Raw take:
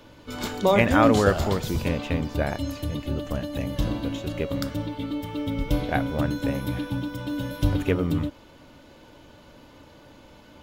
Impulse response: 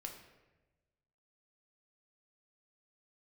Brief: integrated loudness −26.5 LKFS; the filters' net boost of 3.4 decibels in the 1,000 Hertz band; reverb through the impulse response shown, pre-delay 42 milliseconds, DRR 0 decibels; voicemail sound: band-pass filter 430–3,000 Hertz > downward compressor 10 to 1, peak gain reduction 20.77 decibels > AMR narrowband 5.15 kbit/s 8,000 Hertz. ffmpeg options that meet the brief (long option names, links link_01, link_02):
-filter_complex "[0:a]equalizer=frequency=1000:width_type=o:gain=5,asplit=2[link_01][link_02];[1:a]atrim=start_sample=2205,adelay=42[link_03];[link_02][link_03]afir=irnorm=-1:irlink=0,volume=3dB[link_04];[link_01][link_04]amix=inputs=2:normalize=0,highpass=430,lowpass=3000,acompressor=threshold=-31dB:ratio=10,volume=11.5dB" -ar 8000 -c:a libopencore_amrnb -b:a 5150